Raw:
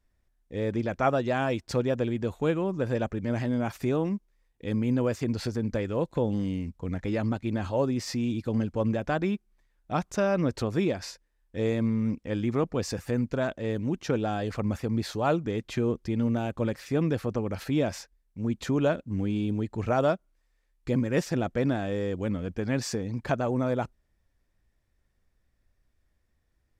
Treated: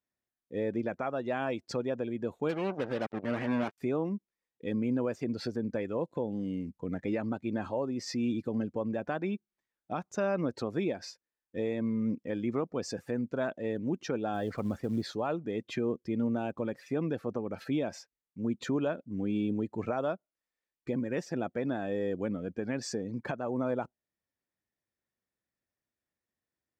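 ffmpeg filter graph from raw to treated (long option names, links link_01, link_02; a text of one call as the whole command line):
ffmpeg -i in.wav -filter_complex "[0:a]asettb=1/sr,asplit=3[link_01][link_02][link_03];[link_01]atrim=end=2.494[link_04];[link_02]atrim=start=2.49:end=3.78,asetpts=PTS-STARTPTS,afade=type=in:duration=0.004:curve=qsin,afade=type=out:start_time=1.286:duration=0.004:curve=qsin,lowpass=3800,acrusher=bits=4:mix=0:aa=0.5[link_05];[link_03]atrim=start=3.776[link_06];[link_04][link_05]acrossfade=duration=0.004:curve1=hsin:curve2=qsin[link_07];[link_07][link_06]acrossfade=duration=0.004:curve1=qsin:curve2=hsin,asettb=1/sr,asplit=3[link_08][link_09][link_10];[link_08]atrim=end=14.344[link_11];[link_09]atrim=start=14.34:end=15.04,asetpts=PTS-STARTPTS,afade=type=in:duration=0.004:curve=qsin,afade=type=out:start_time=0.696:duration=0.004:curve=qsin,lowshelf=frequency=81:gain=11.5,bandreject=frequency=2600:width=19,acrusher=bits=6:mode=log:mix=0:aa=0.000001[link_12];[link_10]atrim=start=15.036[link_13];[link_11][link_12]acrossfade=duration=0.004:curve1=hsin:curve2=qsin[link_14];[link_14][link_13]acrossfade=duration=0.004:curve1=qsin:curve2=hsin,afftdn=noise_reduction=12:noise_floor=-42,highpass=180,alimiter=limit=-21.5dB:level=0:latency=1:release=457" out.wav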